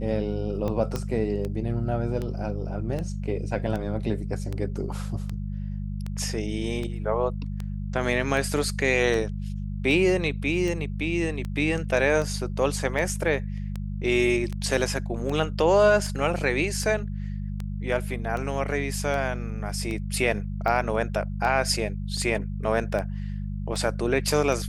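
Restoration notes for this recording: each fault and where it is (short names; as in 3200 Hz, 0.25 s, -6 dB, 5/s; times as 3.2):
hum 50 Hz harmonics 4 -31 dBFS
tick 78 rpm -19 dBFS
0.96 pop -15 dBFS
22.17 gap 3.4 ms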